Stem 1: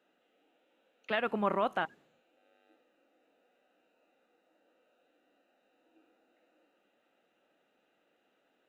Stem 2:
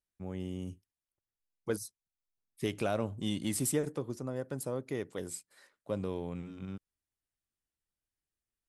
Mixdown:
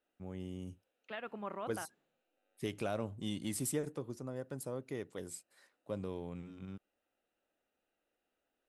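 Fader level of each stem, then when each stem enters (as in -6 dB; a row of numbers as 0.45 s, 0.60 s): -12.0 dB, -5.0 dB; 0.00 s, 0.00 s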